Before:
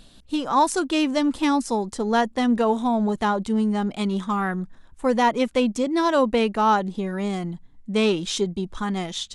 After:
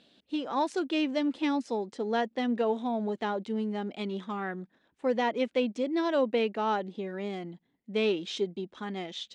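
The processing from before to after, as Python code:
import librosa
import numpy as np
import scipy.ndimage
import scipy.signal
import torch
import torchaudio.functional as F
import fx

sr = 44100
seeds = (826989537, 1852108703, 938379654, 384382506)

y = fx.bandpass_edges(x, sr, low_hz=320.0, high_hz=3100.0)
y = fx.peak_eq(y, sr, hz=1100.0, db=-10.5, octaves=1.2)
y = F.gain(torch.from_numpy(y), -2.5).numpy()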